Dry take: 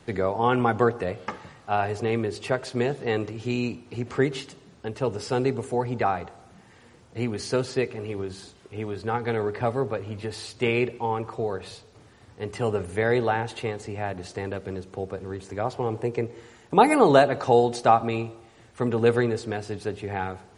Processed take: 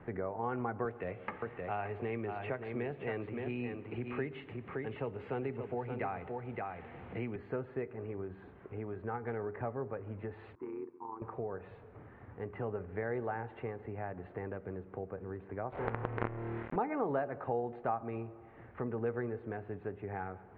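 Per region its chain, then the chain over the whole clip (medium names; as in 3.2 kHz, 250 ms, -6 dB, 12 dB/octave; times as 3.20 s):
0.85–7.36 s: high-order bell 4.4 kHz +10.5 dB 2.3 oct + delay 571 ms -8 dB + three bands compressed up and down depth 40%
10.55–11.22 s: two resonant band-passes 580 Hz, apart 1.6 oct + AM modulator 86 Hz, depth 45%
15.72–16.76 s: flutter echo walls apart 4.5 m, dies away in 1 s + companded quantiser 2-bit
whole clip: inverse Chebyshev low-pass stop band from 5 kHz, stop band 50 dB; compression 2:1, threshold -45 dBFS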